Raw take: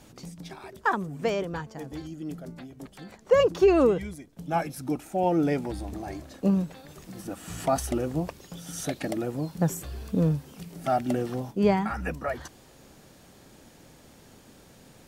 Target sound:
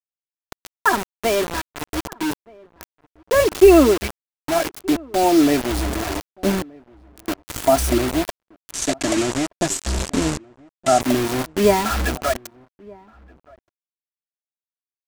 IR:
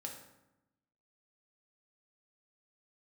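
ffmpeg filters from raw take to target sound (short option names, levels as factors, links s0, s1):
-filter_complex "[0:a]lowshelf=f=63:g=7.5,bandreject=f=50:t=h:w=6,bandreject=f=100:t=h:w=6,aecho=1:1:3:0.81,acrusher=bits=4:mix=0:aa=0.000001,asettb=1/sr,asplit=3[s0][s1][s2];[s0]atrim=end=8.724[s3];[s1]atrim=start=8.72:end=11.01,asetpts=PTS-STARTPTS,afade=t=in:d=0.004:c=qsin,afade=t=out:st=2.286:d=0.004:c=qsin,lowpass=f=7600:t=q:w=2.4[s4];[s2]atrim=start=11.006[s5];[s3][s4]acrossfade=d=0.004:c1=hsin:c2=qsin[s6];[s6][s5]acrossfade=d=0.004:c1=qsin:c2=hsin,asplit=2[s7][s8];[s8]adelay=1224,volume=0.0562,highshelf=f=4000:g=-27.6[s9];[s7][s9]amix=inputs=2:normalize=0,volume=1.88"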